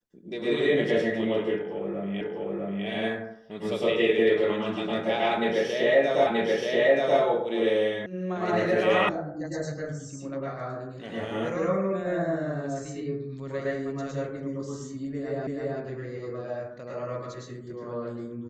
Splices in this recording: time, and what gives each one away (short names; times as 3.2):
2.21 repeat of the last 0.65 s
6.27 repeat of the last 0.93 s
8.06 sound cut off
9.09 sound cut off
15.47 repeat of the last 0.33 s